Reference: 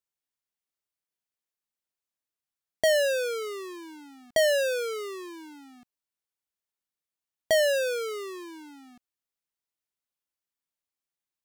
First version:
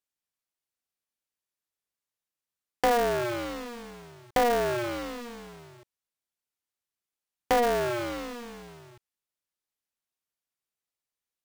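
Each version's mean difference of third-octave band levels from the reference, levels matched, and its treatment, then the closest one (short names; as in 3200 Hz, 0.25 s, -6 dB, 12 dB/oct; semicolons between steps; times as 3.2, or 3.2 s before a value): 13.5 dB: treble ducked by the level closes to 1200 Hz, closed at -22.5 dBFS; polarity switched at an audio rate 120 Hz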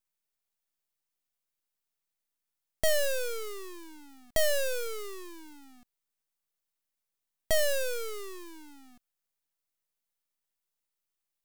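4.0 dB: high shelf 7700 Hz +11 dB; half-wave rectifier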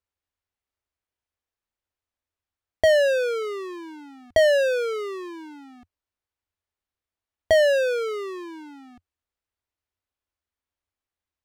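3.0 dB: LPF 2100 Hz 6 dB/oct; resonant low shelf 110 Hz +7 dB, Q 3; gain +6 dB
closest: third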